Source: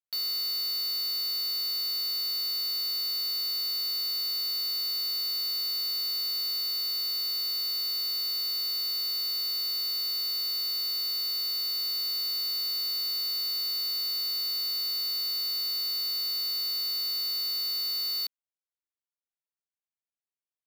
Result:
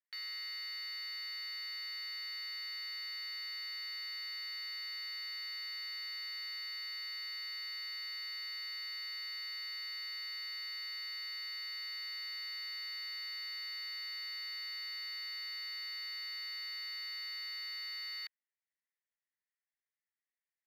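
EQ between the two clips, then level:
resonant band-pass 1,900 Hz, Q 7.6
+11.0 dB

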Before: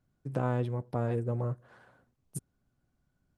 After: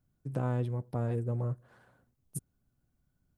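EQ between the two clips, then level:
low-shelf EQ 250 Hz +6.5 dB
high-shelf EQ 9,000 Hz +11.5 dB
−5.0 dB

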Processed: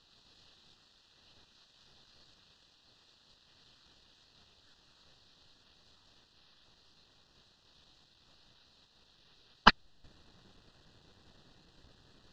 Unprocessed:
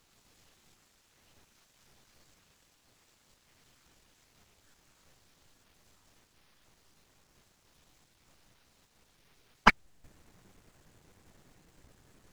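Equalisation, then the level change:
Butterworth band-reject 2,200 Hz, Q 4.1
low-pass with resonance 4,100 Hz, resonance Q 3.5
−1.0 dB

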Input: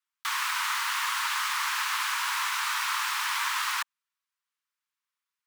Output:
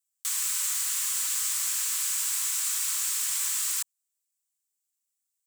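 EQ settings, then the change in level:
first difference
high-shelf EQ 5,000 Hz +7 dB
parametric band 7,700 Hz +11.5 dB 0.5 octaves
−2.5 dB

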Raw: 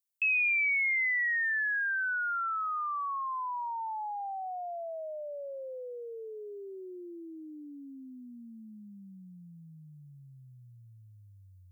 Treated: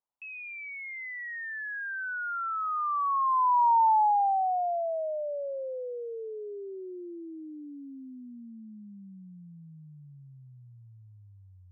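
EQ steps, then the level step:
low-pass with resonance 910 Hz, resonance Q 4.2
+2.0 dB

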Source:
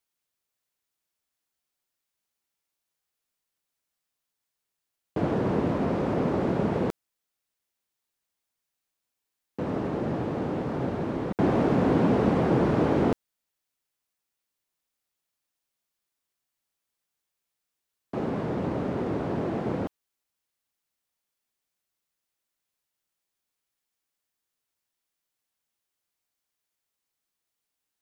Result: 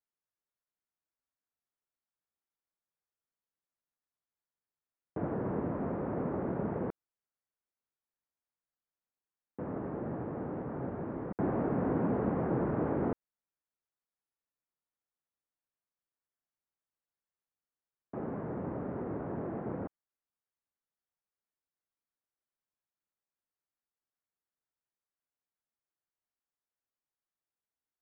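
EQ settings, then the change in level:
low-pass filter 1,800 Hz 24 dB per octave
−8.5 dB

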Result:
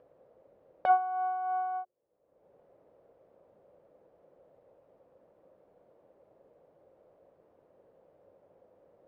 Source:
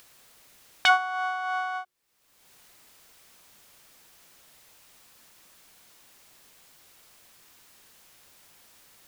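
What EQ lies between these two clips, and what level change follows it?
high-pass filter 100 Hz 6 dB per octave
low-pass with resonance 540 Hz, resonance Q 4.8
parametric band 240 Hz −4 dB 0.31 octaves
0.0 dB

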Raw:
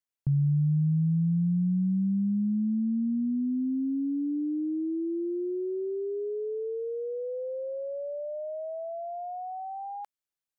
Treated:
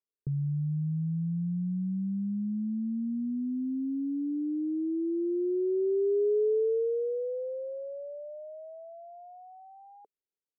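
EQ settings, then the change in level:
low-pass with resonance 430 Hz, resonance Q 4.9
−7.0 dB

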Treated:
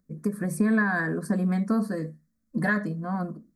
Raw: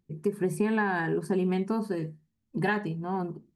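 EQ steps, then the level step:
phaser with its sweep stopped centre 570 Hz, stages 8
+6.0 dB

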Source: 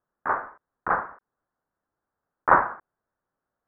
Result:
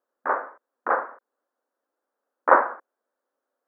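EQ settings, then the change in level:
linear-phase brick-wall high-pass 220 Hz
parametric band 530 Hz +8.5 dB 0.46 octaves
0.0 dB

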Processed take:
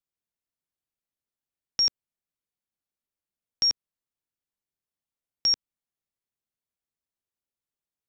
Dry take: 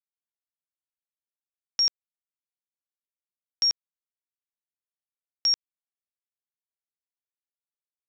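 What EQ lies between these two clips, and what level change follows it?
low-shelf EQ 470 Hz +10 dB
0.0 dB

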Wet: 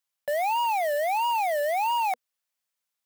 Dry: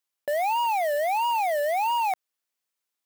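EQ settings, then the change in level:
elliptic band-stop filter 240–490 Hz
0.0 dB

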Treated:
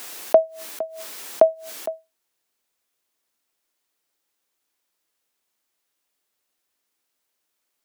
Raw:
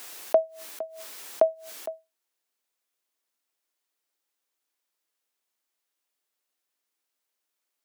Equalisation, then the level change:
low-shelf EQ 210 Hz +7 dB
+5.5 dB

